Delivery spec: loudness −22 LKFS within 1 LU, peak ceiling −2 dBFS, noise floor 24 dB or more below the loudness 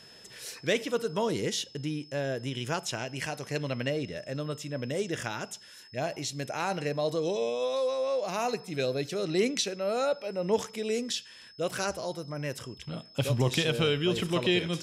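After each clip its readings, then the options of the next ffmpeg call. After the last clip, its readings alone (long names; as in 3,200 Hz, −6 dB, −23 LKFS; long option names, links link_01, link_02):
interfering tone 5,200 Hz; level of the tone −52 dBFS; integrated loudness −31.0 LKFS; sample peak −13.0 dBFS; target loudness −22.0 LKFS
→ -af "bandreject=frequency=5200:width=30"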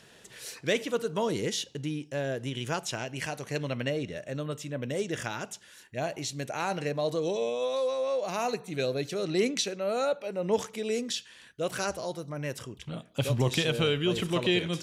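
interfering tone none found; integrated loudness −31.0 LKFS; sample peak −13.0 dBFS; target loudness −22.0 LKFS
→ -af "volume=9dB"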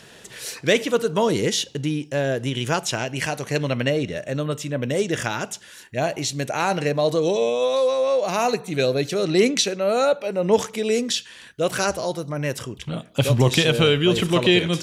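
integrated loudness −22.0 LKFS; sample peak −4.0 dBFS; background noise floor −46 dBFS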